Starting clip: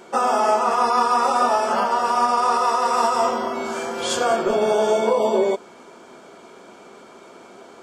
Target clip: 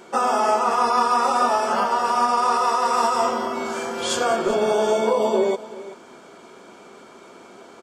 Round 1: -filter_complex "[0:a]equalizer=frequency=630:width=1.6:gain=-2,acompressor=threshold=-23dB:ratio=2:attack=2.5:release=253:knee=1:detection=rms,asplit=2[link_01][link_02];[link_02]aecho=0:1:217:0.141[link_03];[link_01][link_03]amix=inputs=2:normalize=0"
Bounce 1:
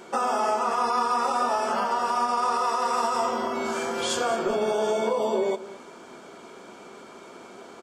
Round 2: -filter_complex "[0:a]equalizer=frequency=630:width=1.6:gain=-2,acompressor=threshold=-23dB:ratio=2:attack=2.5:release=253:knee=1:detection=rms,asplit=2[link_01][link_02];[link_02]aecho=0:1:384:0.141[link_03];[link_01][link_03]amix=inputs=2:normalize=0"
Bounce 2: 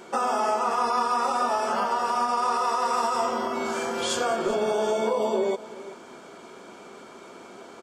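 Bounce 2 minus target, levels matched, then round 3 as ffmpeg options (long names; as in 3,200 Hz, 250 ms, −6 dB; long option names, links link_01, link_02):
downward compressor: peak gain reduction +6.5 dB
-filter_complex "[0:a]equalizer=frequency=630:width=1.6:gain=-2,asplit=2[link_01][link_02];[link_02]aecho=0:1:384:0.141[link_03];[link_01][link_03]amix=inputs=2:normalize=0"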